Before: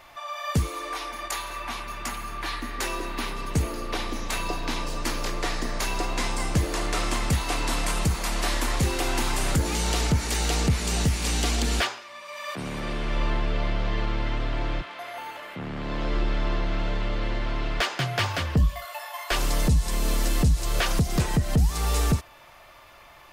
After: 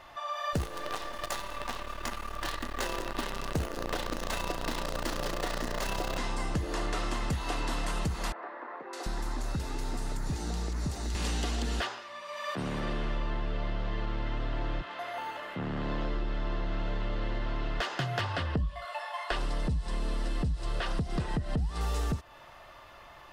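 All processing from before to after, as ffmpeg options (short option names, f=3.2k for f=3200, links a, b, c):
-filter_complex "[0:a]asettb=1/sr,asplit=3[a][b][c];[a]atrim=end=0.534[d];[b]atrim=start=0.53:end=6.18,asetpts=PTS-STARTPTS,afade=t=in:d=0.004:c=qsin,afade=t=out:st=5.646:d=0.004:c=qsin,equalizer=f=560:t=o:w=0.36:g=7.5,acrusher=bits=5:dc=4:mix=0:aa=0.000001[e];[c]atrim=start=6.176[f];[d][e]acrossfade=d=0.004:c1=hsin:c2=qsin[g];[g][f]acrossfade=d=0.004:c1=qsin:c2=hsin,asettb=1/sr,asplit=3[h][i][j];[h]atrim=end=8.324[k];[i]atrim=start=8.32:end=11.15,asetpts=PTS-STARTPTS,afade=t=in:d=0.004:c=qsin,afade=t=out:st=2.826:d=0.004:c=qsin,equalizer=f=3k:w=3.5:g=-8,acrossover=split=400|850[l][m][n];[l]acompressor=threshold=-29dB:ratio=4[o];[m]acompressor=threshold=-47dB:ratio=4[p];[n]acompressor=threshold=-38dB:ratio=4[q];[o][p][q]amix=inputs=3:normalize=0,acrossover=split=390|2000[r][s][t];[t]adelay=610[u];[r]adelay=740[v];[v][s][u]amix=inputs=3:normalize=0,atrim=end_sample=124803[w];[j]atrim=start=11.146[x];[k][w]acrossfade=d=0.004:c1=hsin:c2=qsin[y];[y][x]acrossfade=d=0.004:c1=qsin:c2=hsin,asettb=1/sr,asplit=3[z][aa][ab];[z]atrim=end=18.214[ac];[aa]atrim=start=18.21:end=21.81,asetpts=PTS-STARTPTS,afade=t=in:d=0.004:c=qsin,afade=t=out:st=3.596:d=0.004:c=qsin,lowpass=f=9.4k:w=0.5412,lowpass=f=9.4k:w=1.3066,equalizer=f=6.6k:w=2.8:g=-9[ad];[ab]atrim=start=21.806[ae];[ac][ad]acrossfade=d=0.004:c1=hsin:c2=qsin[af];[af][ae]acrossfade=d=0.004:c1=qsin:c2=hsin,lowpass=f=3.8k:p=1,bandreject=f=2.3k:w=8.8,acompressor=threshold=-28dB:ratio=6"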